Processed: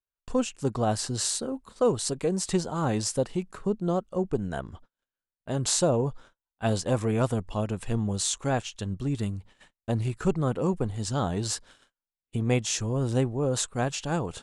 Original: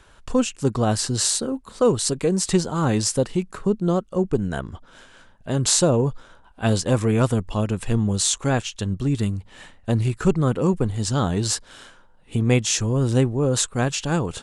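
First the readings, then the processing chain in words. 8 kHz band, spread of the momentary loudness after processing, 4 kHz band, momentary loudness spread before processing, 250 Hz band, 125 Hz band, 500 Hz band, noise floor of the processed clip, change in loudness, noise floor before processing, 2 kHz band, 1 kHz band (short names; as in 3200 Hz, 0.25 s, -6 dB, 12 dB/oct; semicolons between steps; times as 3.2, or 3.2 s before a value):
-7.0 dB, 7 LU, -7.0 dB, 7 LU, -6.5 dB, -7.0 dB, -5.0 dB, under -85 dBFS, -6.5 dB, -52 dBFS, -6.5 dB, -3.5 dB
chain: gate -41 dBFS, range -40 dB; dynamic EQ 710 Hz, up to +5 dB, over -37 dBFS, Q 1.6; gain -7 dB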